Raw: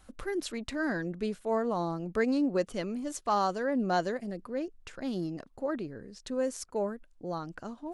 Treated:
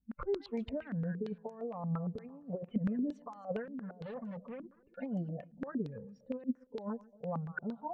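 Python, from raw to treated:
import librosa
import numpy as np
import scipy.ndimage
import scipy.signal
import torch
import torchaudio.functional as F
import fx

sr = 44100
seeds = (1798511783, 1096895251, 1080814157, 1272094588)

y = fx.noise_reduce_blind(x, sr, reduce_db=21)
y = fx.over_compress(y, sr, threshold_db=-35.0, ratio=-0.5)
y = fx.clip_hard(y, sr, threshold_db=-37.5, at=(3.64, 4.8), fade=0.02)
y = fx.air_absorb(y, sr, metres=470.0)
y = fx.notch_comb(y, sr, f0_hz=320.0)
y = fx.echo_feedback(y, sr, ms=135, feedback_pct=50, wet_db=-21.0)
y = fx.filter_held_lowpass(y, sr, hz=8.7, low_hz=240.0, high_hz=6500.0)
y = y * librosa.db_to_amplitude(-2.0)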